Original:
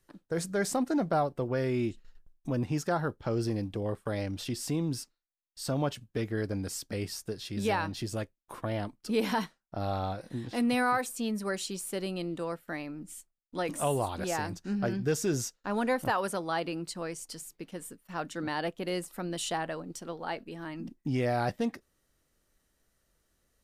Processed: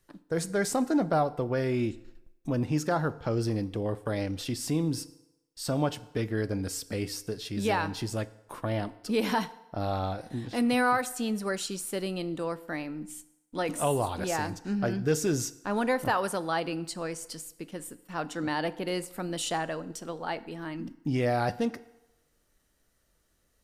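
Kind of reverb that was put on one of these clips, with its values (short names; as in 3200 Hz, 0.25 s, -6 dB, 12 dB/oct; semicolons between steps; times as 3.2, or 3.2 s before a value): FDN reverb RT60 0.95 s, low-frequency decay 0.75×, high-frequency decay 0.8×, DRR 14.5 dB; gain +2 dB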